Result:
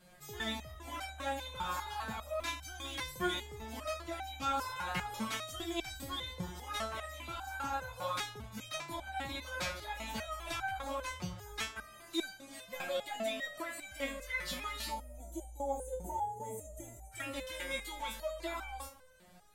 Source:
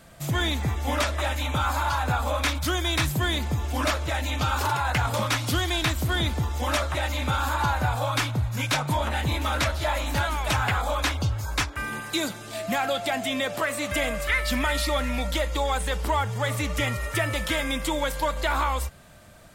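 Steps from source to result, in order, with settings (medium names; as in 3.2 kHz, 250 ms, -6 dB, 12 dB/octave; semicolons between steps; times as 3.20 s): on a send: bucket-brigade echo 84 ms, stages 1024, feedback 47%, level -14.5 dB; on the sum: saturation -16.5 dBFS, distortion -22 dB; time-frequency box 14.90–17.12 s, 960–6000 Hz -23 dB; resonator arpeggio 5 Hz 180–780 Hz; trim +3 dB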